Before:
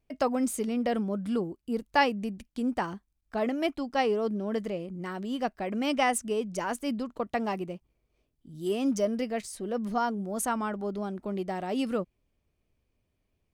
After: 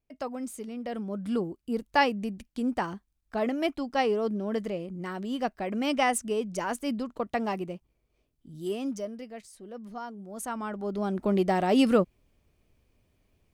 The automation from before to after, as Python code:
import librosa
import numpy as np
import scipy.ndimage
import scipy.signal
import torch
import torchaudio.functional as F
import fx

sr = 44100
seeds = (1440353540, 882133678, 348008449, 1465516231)

y = fx.gain(x, sr, db=fx.line((0.82, -8.0), (1.34, 0.5), (8.53, 0.5), (9.19, -10.5), (10.13, -10.5), (10.86, 0.0), (11.23, 8.0)))